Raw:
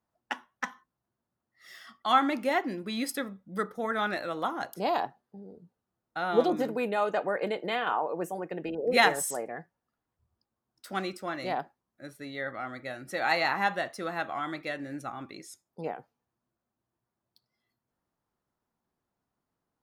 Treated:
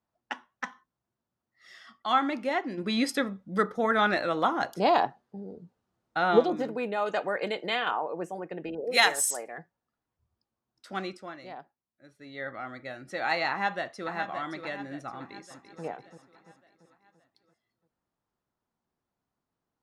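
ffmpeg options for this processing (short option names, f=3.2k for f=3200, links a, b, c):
-filter_complex "[0:a]asplit=3[a][b][c];[a]afade=t=out:st=2.77:d=0.02[d];[b]acontrast=85,afade=t=in:st=2.77:d=0.02,afade=t=out:st=6.38:d=0.02[e];[c]afade=t=in:st=6.38:d=0.02[f];[d][e][f]amix=inputs=3:normalize=0,asettb=1/sr,asplit=3[g][h][i];[g]atrim=end=7.064[j];[h]atrim=start=7.06:end=7.91,asetpts=PTS-STARTPTS,afade=t=in:d=0.004:c=qsin,afade=t=out:st=0.846:d=0.004:c=qsin,highshelf=f=2.3k:g=10.5[k];[i]atrim=start=7.906[l];[j][k]acrossfade=d=0.004:c1=hsin:c2=qsin[m];[m][l]acrossfade=d=0.004:c1=qsin:c2=hsin,asettb=1/sr,asplit=3[n][o][p];[n]atrim=end=8.844[q];[o]atrim=start=8.84:end=9.58,asetpts=PTS-STARTPTS,afade=t=in:d=0.004:c=qsin,afade=t=out:st=0.736:d=0.004:c=qsin,aemphasis=mode=production:type=riaa[r];[p]atrim=start=9.576[s];[q][r]acrossfade=d=0.004:c1=hsin:c2=qsin[t];[t][s]acrossfade=d=0.004:c1=qsin:c2=hsin,asplit=2[u][v];[v]afade=t=in:st=13.49:d=0.01,afade=t=out:st=14.12:d=0.01,aecho=0:1:570|1140|1710|2280|2850|3420:0.375837|0.187919|0.0939594|0.0469797|0.0234898|0.0117449[w];[u][w]amix=inputs=2:normalize=0,asplit=2[x][y];[y]afade=t=in:st=15.16:d=0.01,afade=t=out:st=15.83:d=0.01,aecho=0:1:340|680|1020|1360|1700|2040:0.354813|0.195147|0.107331|0.0590321|0.0324676|0.0178572[z];[x][z]amix=inputs=2:normalize=0,asplit=3[aa][ab][ac];[aa]atrim=end=11.55,asetpts=PTS-STARTPTS,afade=t=out:st=11.1:d=0.45:c=qua:silence=0.316228[ad];[ab]atrim=start=11.55:end=11.98,asetpts=PTS-STARTPTS,volume=-10dB[ae];[ac]atrim=start=11.98,asetpts=PTS-STARTPTS,afade=t=in:d=0.45:c=qua:silence=0.316228[af];[ad][ae][af]concat=n=3:v=0:a=1,lowpass=6.8k,volume=-1.5dB"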